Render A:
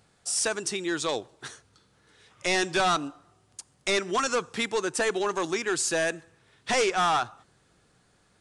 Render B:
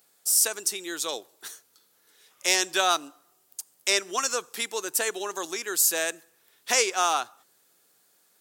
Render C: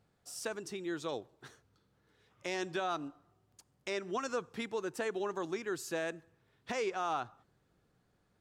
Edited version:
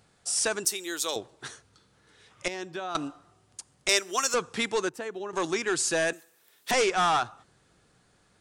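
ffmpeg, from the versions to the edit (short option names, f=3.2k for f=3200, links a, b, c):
-filter_complex "[1:a]asplit=3[a][b][c];[2:a]asplit=2[d][e];[0:a]asplit=6[f][g][h][i][j][k];[f]atrim=end=0.652[l];[a]atrim=start=0.648:end=1.162[m];[g]atrim=start=1.158:end=2.482[n];[d]atrim=start=2.478:end=2.952[o];[h]atrim=start=2.948:end=3.892[p];[b]atrim=start=3.888:end=4.342[q];[i]atrim=start=4.338:end=4.892[r];[e]atrim=start=4.888:end=5.332[s];[j]atrim=start=5.328:end=6.132[t];[c]atrim=start=6.128:end=6.712[u];[k]atrim=start=6.708[v];[l][m]acrossfade=d=0.004:c1=hsin:c2=hsin[w];[w][n]acrossfade=d=0.004:c1=hsin:c2=hsin[x];[x][o]acrossfade=d=0.004:c1=hsin:c2=hsin[y];[y][p]acrossfade=d=0.004:c1=hsin:c2=hsin[z];[z][q]acrossfade=d=0.004:c1=hsin:c2=hsin[aa];[aa][r]acrossfade=d=0.004:c1=hsin:c2=hsin[ab];[ab][s]acrossfade=d=0.004:c1=hsin:c2=hsin[ac];[ac][t]acrossfade=d=0.004:c1=hsin:c2=hsin[ad];[ad][u]acrossfade=d=0.004:c1=hsin:c2=hsin[ae];[ae][v]acrossfade=d=0.004:c1=hsin:c2=hsin"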